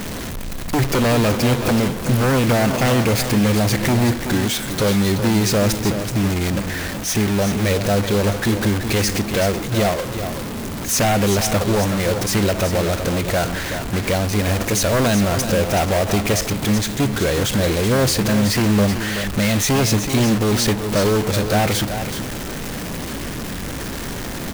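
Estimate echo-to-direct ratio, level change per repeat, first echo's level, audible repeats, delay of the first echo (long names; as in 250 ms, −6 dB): −9.0 dB, repeats not evenly spaced, −9.0 dB, 1, 377 ms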